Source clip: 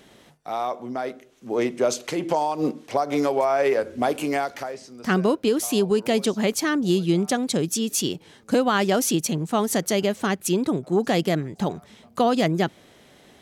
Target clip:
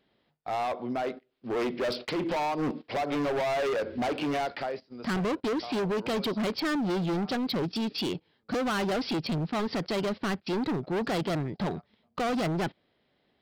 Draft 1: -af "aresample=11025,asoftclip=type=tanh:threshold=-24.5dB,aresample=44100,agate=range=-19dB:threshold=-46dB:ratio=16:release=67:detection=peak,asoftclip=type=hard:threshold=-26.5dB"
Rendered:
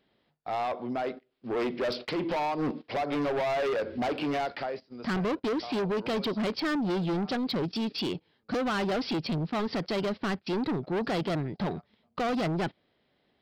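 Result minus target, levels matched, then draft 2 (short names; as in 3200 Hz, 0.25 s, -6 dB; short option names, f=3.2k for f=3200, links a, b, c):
soft clip: distortion +10 dB
-af "aresample=11025,asoftclip=type=tanh:threshold=-15dB,aresample=44100,agate=range=-19dB:threshold=-46dB:ratio=16:release=67:detection=peak,asoftclip=type=hard:threshold=-26.5dB"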